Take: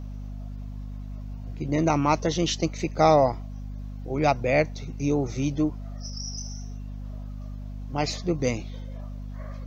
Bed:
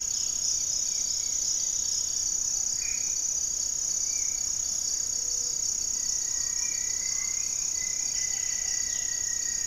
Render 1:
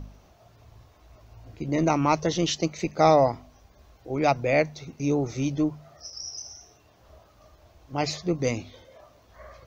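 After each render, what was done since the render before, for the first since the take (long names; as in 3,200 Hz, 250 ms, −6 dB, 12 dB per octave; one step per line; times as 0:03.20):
hum removal 50 Hz, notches 5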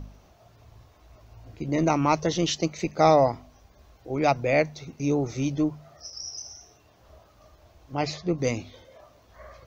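0:07.95–0:08.38: high-frequency loss of the air 78 metres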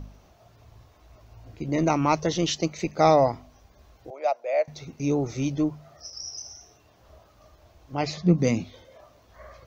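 0:04.10–0:04.68: four-pole ladder high-pass 550 Hz, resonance 65%
0:08.17–0:08.64: parametric band 190 Hz +14 dB 0.71 octaves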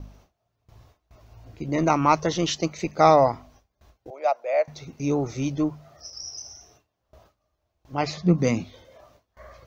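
noise gate with hold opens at −43 dBFS
dynamic equaliser 1,200 Hz, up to +6 dB, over −39 dBFS, Q 1.2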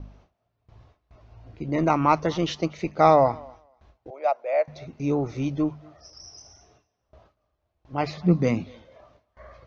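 high-frequency loss of the air 160 metres
feedback echo with a high-pass in the loop 239 ms, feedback 17%, high-pass 360 Hz, level −23.5 dB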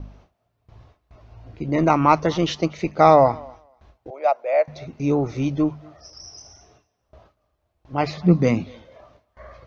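level +4 dB
brickwall limiter −2 dBFS, peak gain reduction 1 dB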